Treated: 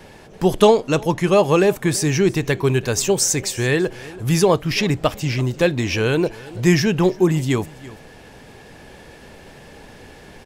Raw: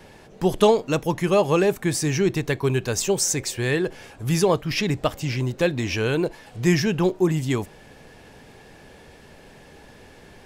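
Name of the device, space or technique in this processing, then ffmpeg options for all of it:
ducked delay: -filter_complex "[0:a]asplit=3[link_01][link_02][link_03];[link_02]adelay=334,volume=-5dB[link_04];[link_03]apad=whole_len=475743[link_05];[link_04][link_05]sidechaincompress=threshold=-38dB:ratio=4:attack=16:release=1030[link_06];[link_01][link_06]amix=inputs=2:normalize=0,asettb=1/sr,asplit=3[link_07][link_08][link_09];[link_07]atrim=end=0.654[link_10];[link_08]atrim=start=0.65:end=1.36,asetpts=PTS-STARTPTS,afade=type=in:duration=0.004:curve=qsin,afade=type=out:start_time=0.706:duration=0.004:curve=qsin,lowpass=11000[link_11];[link_09]atrim=start=1.356[link_12];[link_10][link_11]acrossfade=duration=0.004:curve1=hsin:curve2=qsin[link_13];[link_13][link_12]acrossfade=duration=0.004:curve1=qsin:curve2=hsin,volume=4dB"

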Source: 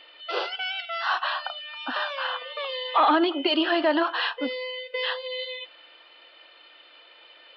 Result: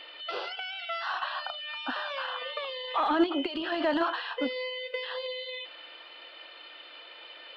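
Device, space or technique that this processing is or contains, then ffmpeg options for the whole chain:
de-esser from a sidechain: -filter_complex "[0:a]asplit=2[link_01][link_02];[link_02]highpass=4900,apad=whole_len=333507[link_03];[link_01][link_03]sidechaincompress=threshold=-51dB:ratio=16:attack=4.6:release=24,volume=4dB"

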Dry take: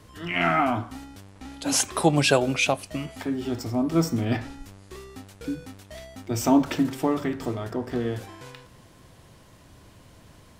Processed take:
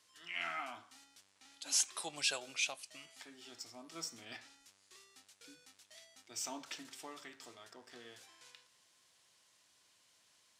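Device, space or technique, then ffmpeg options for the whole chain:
piezo pickup straight into a mixer: -af "lowpass=6700,aderivative,volume=-3.5dB"

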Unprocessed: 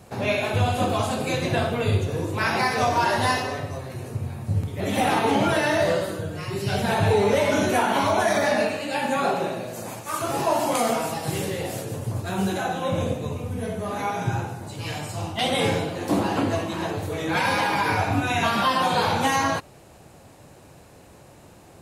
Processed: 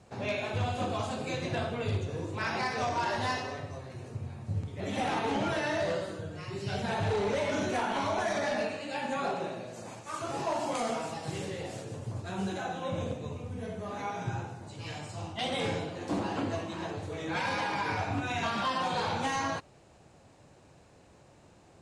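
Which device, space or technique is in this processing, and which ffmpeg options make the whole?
synthesiser wavefolder: -af "aeval=exprs='0.188*(abs(mod(val(0)/0.188+3,4)-2)-1)':channel_layout=same,lowpass=frequency=8200:width=0.5412,lowpass=frequency=8200:width=1.3066,volume=-9dB"

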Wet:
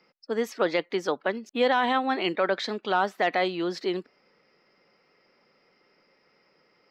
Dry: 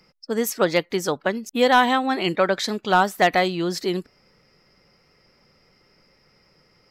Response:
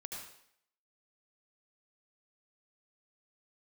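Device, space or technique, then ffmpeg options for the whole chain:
DJ mixer with the lows and highs turned down: -filter_complex "[0:a]acrossover=split=210 4700:gain=0.0794 1 0.0891[link_01][link_02][link_03];[link_01][link_02][link_03]amix=inputs=3:normalize=0,alimiter=limit=-10dB:level=0:latency=1:release=13,volume=-2.5dB"

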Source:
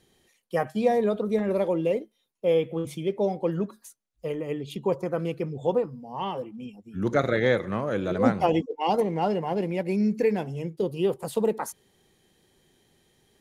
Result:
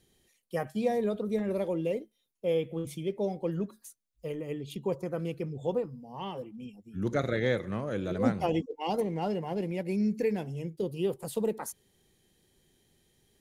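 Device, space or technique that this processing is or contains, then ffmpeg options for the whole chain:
smiley-face EQ: -af "lowshelf=frequency=96:gain=6.5,equalizer=frequency=1000:width_type=o:width=1.5:gain=-4,highshelf=frequency=7200:gain=5.5,volume=-5dB"

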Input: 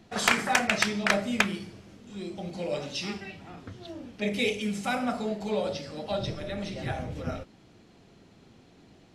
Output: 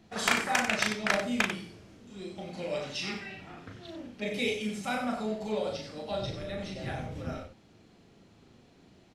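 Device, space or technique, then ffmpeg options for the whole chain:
slapback doubling: -filter_complex "[0:a]asplit=3[link_01][link_02][link_03];[link_02]adelay=37,volume=-4dB[link_04];[link_03]adelay=94,volume=-8.5dB[link_05];[link_01][link_04][link_05]amix=inputs=3:normalize=0,asettb=1/sr,asplit=3[link_06][link_07][link_08];[link_06]atrim=end=2.384[link_09];[link_07]atrim=start=2.38:end=4.07,asetpts=PTS-STARTPTS,afade=type=in:duration=0.004:curve=qsin,afade=type=out:start_time=1.686:duration=0.004:curve=qsin,equalizer=frequency=1900:width_type=o:width=1.4:gain=5[link_10];[link_08]atrim=start=4.066[link_11];[link_09][link_10]acrossfade=duration=0.004:curve1=hsin:curve2=qsin[link_12];[link_12][link_11]acrossfade=duration=0.004:curve1=qsin:curve2=hsin,volume=-4.5dB"

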